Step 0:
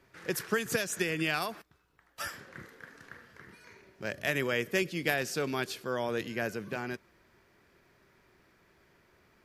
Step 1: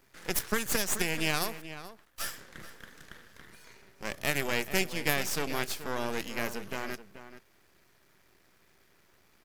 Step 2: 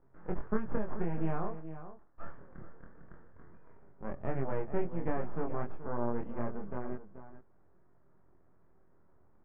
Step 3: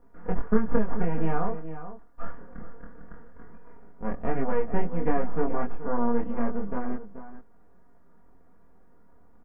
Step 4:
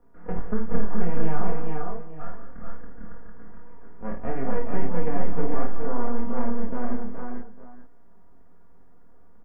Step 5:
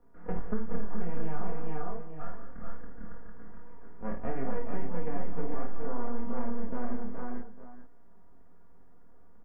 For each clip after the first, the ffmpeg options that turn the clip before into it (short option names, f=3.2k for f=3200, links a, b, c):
-filter_complex "[0:a]highshelf=f=4.6k:g=11,aeval=exprs='max(val(0),0)':c=same,asplit=2[a][b];[b]adelay=431.5,volume=-12dB,highshelf=f=4k:g=-9.71[c];[a][c]amix=inputs=2:normalize=0,volume=2dB"
-af "lowpass=f=1.2k:w=0.5412,lowpass=f=1.2k:w=1.3066,lowshelf=f=200:g=6.5,flanger=delay=22.5:depth=2.6:speed=0.25"
-af "aecho=1:1:4.2:0.77,volume=6dB"
-filter_complex "[0:a]acrossover=split=160[a][b];[b]acompressor=threshold=-26dB:ratio=6[c];[a][c]amix=inputs=2:normalize=0,aecho=1:1:52|171|212|421|454:0.473|0.237|0.266|0.473|0.596,volume=-2dB"
-af "acompressor=threshold=-18dB:ratio=2.5,volume=-3dB"